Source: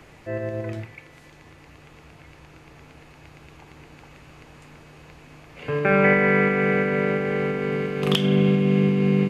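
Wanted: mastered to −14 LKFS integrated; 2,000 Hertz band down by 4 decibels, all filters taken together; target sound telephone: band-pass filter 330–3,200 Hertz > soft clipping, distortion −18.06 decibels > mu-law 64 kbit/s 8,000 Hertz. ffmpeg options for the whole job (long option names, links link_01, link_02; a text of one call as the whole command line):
ffmpeg -i in.wav -af "highpass=330,lowpass=3200,equalizer=frequency=2000:width_type=o:gain=-4,asoftclip=threshold=-16dB,volume=12.5dB" -ar 8000 -c:a pcm_mulaw out.wav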